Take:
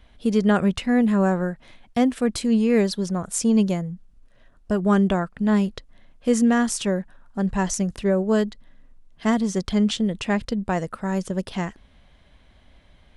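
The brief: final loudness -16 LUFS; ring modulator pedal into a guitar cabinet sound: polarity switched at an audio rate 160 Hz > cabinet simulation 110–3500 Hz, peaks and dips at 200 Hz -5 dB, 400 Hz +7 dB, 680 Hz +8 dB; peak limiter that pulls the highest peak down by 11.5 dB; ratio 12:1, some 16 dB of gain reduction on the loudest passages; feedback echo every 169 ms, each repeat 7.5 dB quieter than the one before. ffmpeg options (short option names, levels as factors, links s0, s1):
-af "acompressor=threshold=0.0282:ratio=12,alimiter=level_in=1.88:limit=0.0631:level=0:latency=1,volume=0.531,aecho=1:1:169|338|507|676|845:0.422|0.177|0.0744|0.0312|0.0131,aeval=exprs='val(0)*sgn(sin(2*PI*160*n/s))':c=same,highpass=110,equalizer=f=200:t=q:w=4:g=-5,equalizer=f=400:t=q:w=4:g=7,equalizer=f=680:t=q:w=4:g=8,lowpass=f=3500:w=0.5412,lowpass=f=3500:w=1.3066,volume=9.44"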